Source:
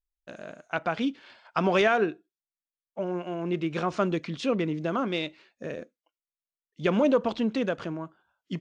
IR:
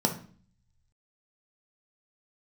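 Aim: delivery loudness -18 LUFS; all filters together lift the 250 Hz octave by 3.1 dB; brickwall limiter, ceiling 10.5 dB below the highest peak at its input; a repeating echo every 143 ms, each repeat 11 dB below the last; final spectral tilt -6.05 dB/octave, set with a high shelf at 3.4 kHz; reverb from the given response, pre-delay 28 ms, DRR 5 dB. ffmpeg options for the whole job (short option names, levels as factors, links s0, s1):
-filter_complex "[0:a]equalizer=f=250:t=o:g=4,highshelf=f=3400:g=9,alimiter=limit=0.106:level=0:latency=1,aecho=1:1:143|286|429:0.282|0.0789|0.0221,asplit=2[s0][s1];[1:a]atrim=start_sample=2205,adelay=28[s2];[s1][s2]afir=irnorm=-1:irlink=0,volume=0.178[s3];[s0][s3]amix=inputs=2:normalize=0,volume=2.51"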